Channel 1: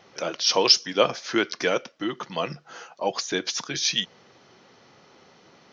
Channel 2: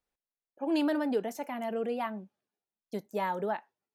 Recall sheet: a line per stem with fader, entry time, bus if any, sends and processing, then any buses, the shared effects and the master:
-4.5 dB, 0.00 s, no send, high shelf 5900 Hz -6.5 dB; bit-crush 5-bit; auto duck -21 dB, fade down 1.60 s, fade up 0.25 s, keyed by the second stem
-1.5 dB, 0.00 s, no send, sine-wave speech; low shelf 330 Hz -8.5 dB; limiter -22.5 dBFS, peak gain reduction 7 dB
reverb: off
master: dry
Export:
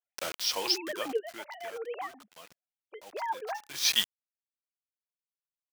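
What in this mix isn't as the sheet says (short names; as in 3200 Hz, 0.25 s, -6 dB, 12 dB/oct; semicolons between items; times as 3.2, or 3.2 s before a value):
stem 2: missing limiter -22.5 dBFS, peak gain reduction 7 dB; master: extra tilt shelf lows -5.5 dB, about 790 Hz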